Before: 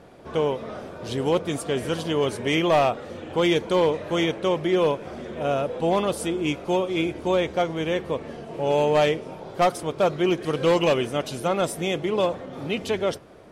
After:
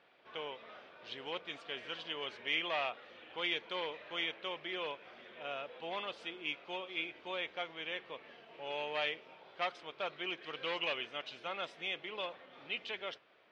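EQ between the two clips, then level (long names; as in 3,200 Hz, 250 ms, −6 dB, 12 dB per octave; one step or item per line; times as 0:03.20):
resonant band-pass 2,900 Hz, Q 1.4
high-frequency loss of the air 200 metres
−2.5 dB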